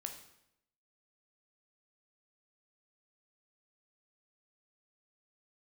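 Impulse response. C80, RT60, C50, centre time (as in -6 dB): 11.0 dB, 0.80 s, 8.0 dB, 19 ms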